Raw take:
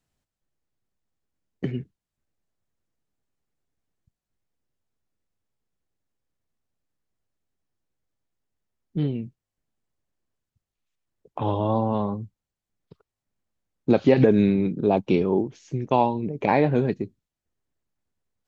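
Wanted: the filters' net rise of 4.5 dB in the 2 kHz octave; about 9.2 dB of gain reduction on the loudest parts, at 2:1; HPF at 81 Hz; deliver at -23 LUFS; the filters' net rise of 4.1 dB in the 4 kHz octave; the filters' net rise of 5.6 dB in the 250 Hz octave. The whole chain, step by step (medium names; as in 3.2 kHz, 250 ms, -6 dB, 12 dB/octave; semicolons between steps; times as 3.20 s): high-pass 81 Hz; peaking EQ 250 Hz +7 dB; peaking EQ 2 kHz +4.5 dB; peaking EQ 4 kHz +3.5 dB; compression 2:1, threshold -25 dBFS; trim +3.5 dB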